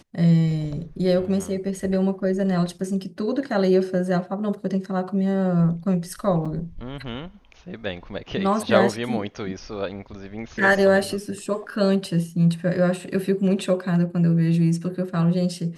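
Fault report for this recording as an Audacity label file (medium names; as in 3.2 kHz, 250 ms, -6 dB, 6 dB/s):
6.450000	6.460000	dropout 5.6 ms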